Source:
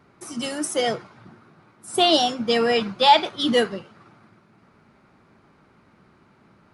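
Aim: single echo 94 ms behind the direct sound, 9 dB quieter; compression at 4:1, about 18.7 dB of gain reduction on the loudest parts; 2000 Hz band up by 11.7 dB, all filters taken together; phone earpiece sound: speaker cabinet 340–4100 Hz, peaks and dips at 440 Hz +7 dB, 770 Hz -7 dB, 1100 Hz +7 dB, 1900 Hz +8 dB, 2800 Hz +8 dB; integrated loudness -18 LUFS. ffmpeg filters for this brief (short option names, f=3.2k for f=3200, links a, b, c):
-af "equalizer=f=2k:t=o:g=5.5,acompressor=threshold=-32dB:ratio=4,highpass=340,equalizer=f=440:t=q:w=4:g=7,equalizer=f=770:t=q:w=4:g=-7,equalizer=f=1.1k:t=q:w=4:g=7,equalizer=f=1.9k:t=q:w=4:g=8,equalizer=f=2.8k:t=q:w=4:g=8,lowpass=f=4.1k:w=0.5412,lowpass=f=4.1k:w=1.3066,aecho=1:1:94:0.355,volume=12dB"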